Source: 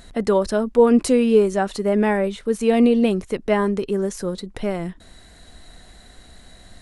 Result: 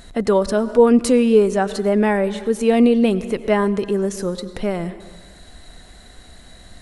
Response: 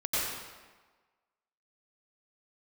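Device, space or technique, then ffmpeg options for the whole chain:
ducked reverb: -filter_complex "[0:a]asplit=3[a][b][c];[1:a]atrim=start_sample=2205[d];[b][d]afir=irnorm=-1:irlink=0[e];[c]apad=whole_len=300416[f];[e][f]sidechaincompress=threshold=-25dB:ratio=8:attack=25:release=114,volume=-20dB[g];[a][g]amix=inputs=2:normalize=0,volume=1.5dB"

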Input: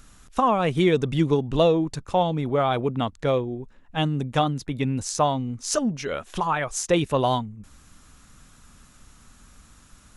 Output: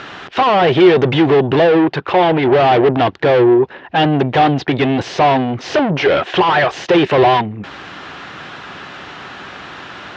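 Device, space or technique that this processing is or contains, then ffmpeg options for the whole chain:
overdrive pedal into a guitar cabinet: -filter_complex "[0:a]asplit=2[a][b];[b]highpass=f=720:p=1,volume=36dB,asoftclip=type=tanh:threshold=-7dB[c];[a][c]amix=inputs=2:normalize=0,lowpass=f=1.6k:p=1,volume=-6dB,highpass=100,equalizer=f=230:t=q:w=4:g=-8,equalizer=f=370:t=q:w=4:g=7,equalizer=f=750:t=q:w=4:g=4,equalizer=f=1.2k:t=q:w=4:g=-4,equalizer=f=1.8k:t=q:w=4:g=3,equalizer=f=3k:t=q:w=4:g=4,lowpass=f=4.4k:w=0.5412,lowpass=f=4.4k:w=1.3066,asettb=1/sr,asplit=3[d][e][f];[d]atrim=end=1.674[g];[e]atrim=start=1.67:end=2.43,asetpts=PTS-STARTPTS,afade=t=in:d=0.004:c=qsin,afade=t=out:st=0.756:d=0.004:c=qsin,bass=f=250:g=-3,treble=f=4k:g=-6[h];[f]atrim=start=2.426[i];[g][h]acrossfade=d=0.004:c1=hsin:c2=qsin[j];[j][i]acrossfade=d=0.004:c1=qsin:c2=hsin,volume=1.5dB"

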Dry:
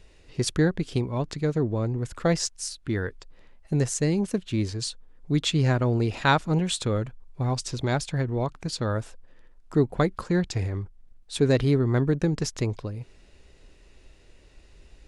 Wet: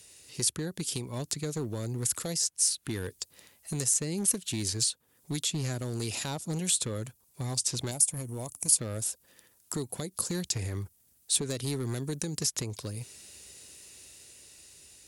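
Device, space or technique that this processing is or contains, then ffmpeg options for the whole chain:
FM broadcast chain: -filter_complex "[0:a]highpass=f=75:w=0.5412,highpass=f=75:w=1.3066,dynaudnorm=f=480:g=7:m=5dB,acrossover=split=770|3300[a][b][c];[a]acompressor=threshold=-21dB:ratio=4[d];[b]acompressor=threshold=-42dB:ratio=4[e];[c]acompressor=threshold=-44dB:ratio=4[f];[d][e][f]amix=inputs=3:normalize=0,aemphasis=mode=production:type=75fm,alimiter=limit=-17dB:level=0:latency=1:release=254,asoftclip=type=hard:threshold=-20.5dB,lowpass=f=15k:w=0.5412,lowpass=f=15k:w=1.3066,aemphasis=mode=production:type=75fm,asettb=1/sr,asplit=3[g][h][i];[g]atrim=end=7.914[j];[h]atrim=start=7.91:end=8.79,asetpts=PTS-STARTPTS,afade=t=in:d=0.004:c=qsin,afade=t=out:st=0.876:d=0.004:c=qsin,equalizer=f=160:t=o:w=0.67:g=-6,equalizer=f=400:t=o:w=0.67:g=-6,equalizer=f=1.6k:t=o:w=0.67:g=-11,equalizer=f=4k:t=o:w=0.67:g=-11,equalizer=f=10k:t=o:w=0.67:g=11[k];[i]atrim=start=8.786[l];[j][k]acrossfade=d=0.004:c1=hsin:c2=qsin[m];[m][l]acrossfade=d=0.004:c1=qsin:c2=hsin,volume=-5dB"

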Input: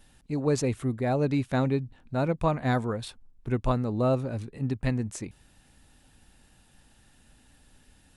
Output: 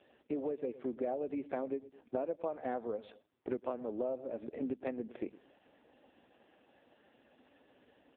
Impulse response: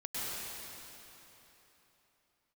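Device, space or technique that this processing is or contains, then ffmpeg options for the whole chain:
voicemail: -filter_complex "[0:a]highpass=f=190:w=0.5412,highpass=f=190:w=1.3066,highpass=400,lowpass=2.8k,lowshelf=f=790:t=q:w=1.5:g=7,asplit=2[a][b];[b]adelay=107,lowpass=f=1.7k:p=1,volume=-21dB,asplit=2[c][d];[d]adelay=107,lowpass=f=1.7k:p=1,volume=0.29[e];[a][c][e]amix=inputs=3:normalize=0,acompressor=threshold=-35dB:ratio=8,volume=2dB" -ar 8000 -c:a libopencore_amrnb -b:a 5150

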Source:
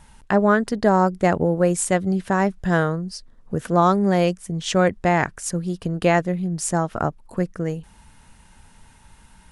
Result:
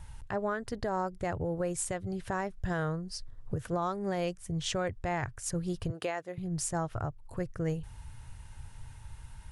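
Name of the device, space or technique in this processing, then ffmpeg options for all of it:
car stereo with a boomy subwoofer: -filter_complex "[0:a]asettb=1/sr,asplit=3[a][b][c];[a]atrim=end=5.904[d];[b]atrim=start=5.9:end=6.38,asetpts=PTS-STARTPTS,afade=t=in:d=0.004:c=qsin,afade=t=out:st=0.476:d=0.004:c=qsin,highpass=350[e];[c]atrim=start=6.376[f];[d][e]acrossfade=d=0.004:c1=hsin:c2=qsin[g];[g][f]acrossfade=d=0.004:c1=qsin:c2=hsin,lowshelf=f=150:t=q:w=3:g=8.5,alimiter=limit=-18.5dB:level=0:latency=1:release=462,volume=-4.5dB"

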